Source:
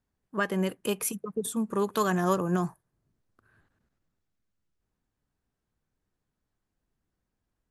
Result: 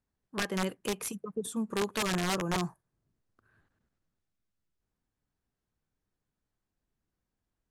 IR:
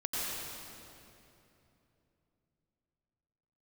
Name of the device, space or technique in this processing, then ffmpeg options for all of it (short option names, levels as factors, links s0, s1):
overflowing digital effects unit: -af "aeval=exprs='(mod(10*val(0)+1,2)-1)/10':c=same,lowpass=10000,volume=0.668"